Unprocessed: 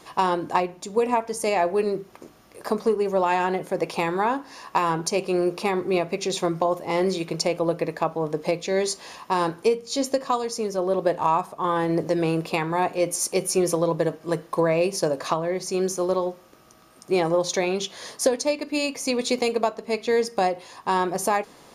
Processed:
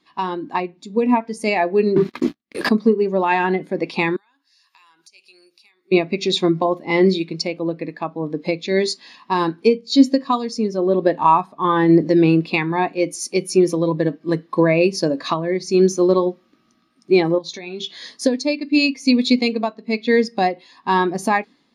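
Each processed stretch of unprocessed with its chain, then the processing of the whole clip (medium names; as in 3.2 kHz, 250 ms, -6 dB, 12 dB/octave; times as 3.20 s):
1.96–2.69 s: expander -48 dBFS + waveshaping leveller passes 5
4.16–5.92 s: differentiator + compression 3:1, threshold -52 dBFS
17.38–18.07 s: compression 3:1, threshold -32 dBFS + doubling 18 ms -10 dB
whole clip: graphic EQ 250/500/2000/4000 Hz +10/-4/+7/+10 dB; level rider; spectral contrast expander 1.5:1; trim -1 dB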